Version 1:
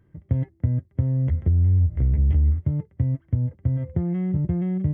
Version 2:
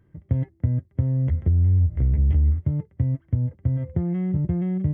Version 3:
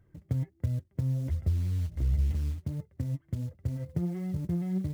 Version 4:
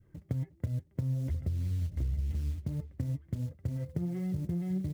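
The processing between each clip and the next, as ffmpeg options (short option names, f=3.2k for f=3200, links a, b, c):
-af anull
-filter_complex "[0:a]asplit=2[a][b];[b]acompressor=threshold=-32dB:ratio=4,volume=0dB[c];[a][c]amix=inputs=2:normalize=0,acrusher=bits=8:mode=log:mix=0:aa=0.000001,flanger=delay=1.4:depth=5.5:regen=36:speed=1.4:shape=sinusoidal,volume=-6dB"
-filter_complex "[0:a]adynamicequalizer=threshold=0.00158:dfrequency=1000:dqfactor=1:tfrequency=1000:tqfactor=1:attack=5:release=100:ratio=0.375:range=2.5:mode=cutabove:tftype=bell,acompressor=threshold=-30dB:ratio=6,asplit=2[a][b];[b]adelay=358,lowpass=f=2.5k:p=1,volume=-16dB,asplit=2[c][d];[d]adelay=358,lowpass=f=2.5k:p=1,volume=0.39,asplit=2[e][f];[f]adelay=358,lowpass=f=2.5k:p=1,volume=0.39[g];[a][c][e][g]amix=inputs=4:normalize=0,volume=1dB"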